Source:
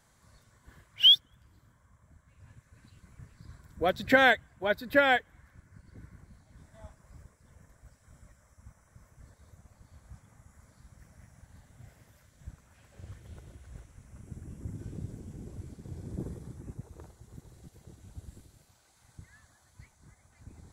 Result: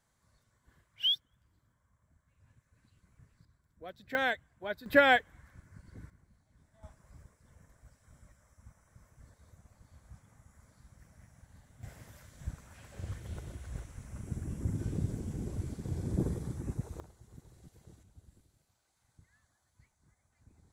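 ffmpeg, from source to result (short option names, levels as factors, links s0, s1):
-af "asetnsamples=n=441:p=0,asendcmd='3.45 volume volume -19dB;4.15 volume volume -9dB;4.86 volume volume 0.5dB;6.1 volume volume -11dB;6.83 volume volume -3dB;11.83 volume volume 6dB;17 volume volume -4.5dB;18.03 volume volume -12dB',volume=0.299"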